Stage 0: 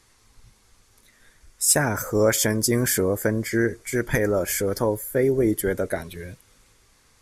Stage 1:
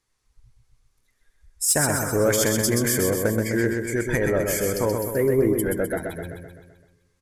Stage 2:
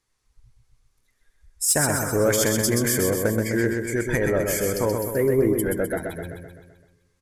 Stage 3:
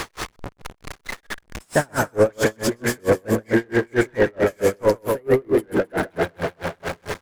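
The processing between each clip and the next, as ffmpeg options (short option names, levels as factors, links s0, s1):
-filter_complex "[0:a]afftdn=nr=16:nf=-40,acontrast=86,asplit=2[s0][s1];[s1]aecho=0:1:128|256|384|512|640|768|896:0.596|0.328|0.18|0.0991|0.0545|0.03|0.0165[s2];[s0][s2]amix=inputs=2:normalize=0,volume=0.398"
-af anull
-filter_complex "[0:a]aeval=exprs='val(0)+0.5*0.0473*sgn(val(0))':c=same,asplit=2[s0][s1];[s1]highpass=f=720:p=1,volume=8.91,asoftclip=type=tanh:threshold=0.355[s2];[s0][s2]amix=inputs=2:normalize=0,lowpass=f=1100:p=1,volume=0.501,aeval=exprs='val(0)*pow(10,-38*(0.5-0.5*cos(2*PI*4.5*n/s))/20)':c=same,volume=1.78"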